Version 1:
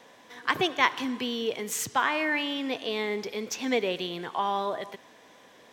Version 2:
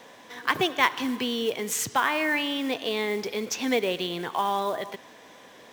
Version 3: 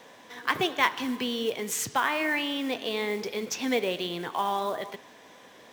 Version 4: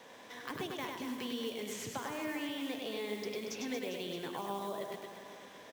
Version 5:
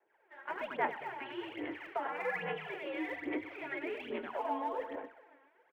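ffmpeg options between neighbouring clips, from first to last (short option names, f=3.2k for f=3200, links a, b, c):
-filter_complex "[0:a]asplit=2[a][b];[b]acompressor=threshold=-33dB:ratio=10,volume=-3dB[c];[a][c]amix=inputs=2:normalize=0,acrusher=bits=5:mode=log:mix=0:aa=0.000001"
-af "flanger=delay=5.8:depth=7:regen=-84:speed=1.2:shape=triangular,volume=2.5dB"
-filter_complex "[0:a]acrossover=split=570|5200[a][b][c];[a]acompressor=threshold=-37dB:ratio=4[d];[b]acompressor=threshold=-43dB:ratio=4[e];[c]acompressor=threshold=-49dB:ratio=4[f];[d][e][f]amix=inputs=3:normalize=0,asplit=2[g][h];[h]aecho=0:1:100|230|399|618.7|904.3:0.631|0.398|0.251|0.158|0.1[i];[g][i]amix=inputs=2:normalize=0,volume=-4dB"
-af "agate=range=-33dB:threshold=-40dB:ratio=3:detection=peak,highpass=f=530:t=q:w=0.5412,highpass=f=530:t=q:w=1.307,lowpass=f=2.5k:t=q:w=0.5176,lowpass=f=2.5k:t=q:w=0.7071,lowpass=f=2.5k:t=q:w=1.932,afreqshift=-120,aphaser=in_gain=1:out_gain=1:delay=3.7:decay=0.68:speed=1.2:type=sinusoidal,volume=3dB"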